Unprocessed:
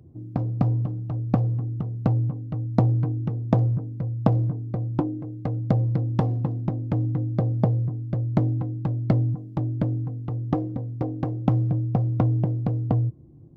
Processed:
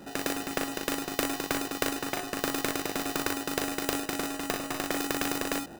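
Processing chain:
wrong playback speed 33 rpm record played at 78 rpm
in parallel at −4.5 dB: sample-rate reduction 1,100 Hz, jitter 0%
on the sum: ambience of single reflections 39 ms −4.5 dB, 60 ms −8.5 dB
every bin compressed towards the loudest bin 2 to 1
level −5 dB

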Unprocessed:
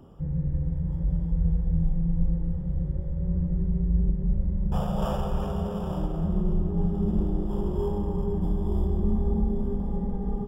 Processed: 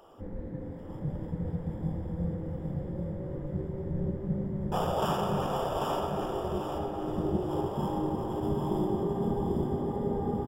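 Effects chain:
0:05.99–0:07.05: bass and treble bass −5 dB, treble −5 dB
gate on every frequency bin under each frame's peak −10 dB weak
on a send: repeating echo 792 ms, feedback 30%, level −4 dB
on the sum: level +5 dB

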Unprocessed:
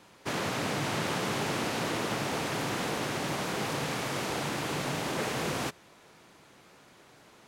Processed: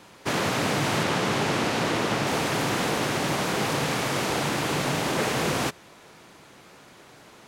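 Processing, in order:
0:01.03–0:02.27: high-shelf EQ 10,000 Hz −9 dB
level +6.5 dB

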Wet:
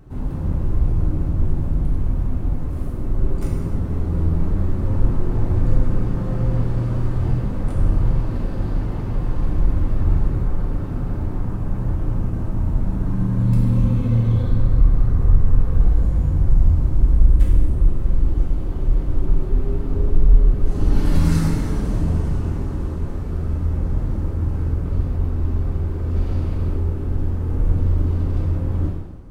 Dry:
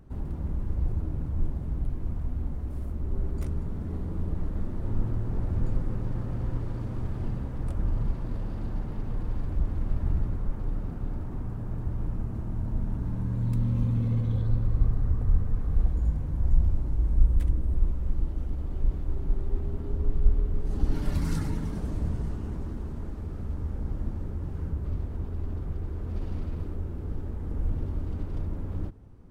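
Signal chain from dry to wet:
in parallel at −0.5 dB: brickwall limiter −17 dBFS, peak gain reduction 8.5 dB
on the sum: reverb whose tail is shaped and stops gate 370 ms falling, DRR −4 dB
level −1 dB

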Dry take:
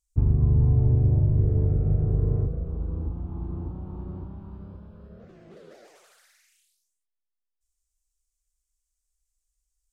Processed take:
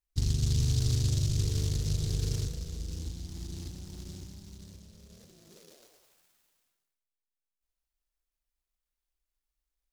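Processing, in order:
short delay modulated by noise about 5,000 Hz, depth 0.27 ms
level −7.5 dB

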